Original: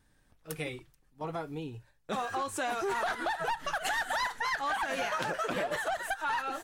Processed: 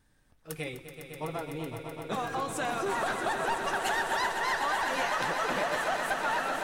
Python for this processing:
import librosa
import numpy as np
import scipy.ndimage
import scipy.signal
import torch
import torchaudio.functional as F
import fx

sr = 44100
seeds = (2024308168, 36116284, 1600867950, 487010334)

y = fx.echo_swell(x, sr, ms=126, loudest=5, wet_db=-10.0)